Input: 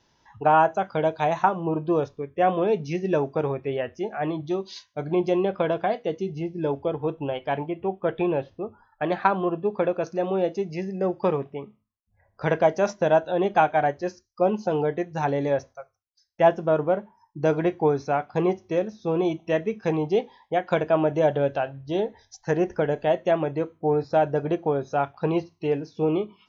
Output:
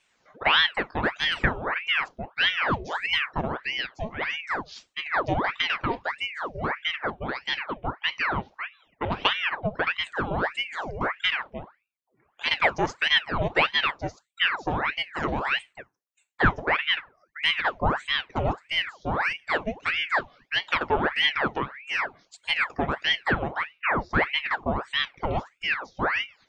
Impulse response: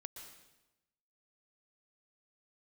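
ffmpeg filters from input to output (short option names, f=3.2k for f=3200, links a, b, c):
-af "aeval=exprs='val(0)*sin(2*PI*1400*n/s+1400*0.85/1.6*sin(2*PI*1.6*n/s))':c=same"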